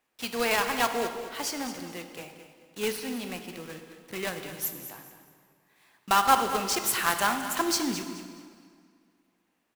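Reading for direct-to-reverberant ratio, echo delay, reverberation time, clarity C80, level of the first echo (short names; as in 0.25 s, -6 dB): 6.0 dB, 0.214 s, 2.1 s, 7.5 dB, -12.0 dB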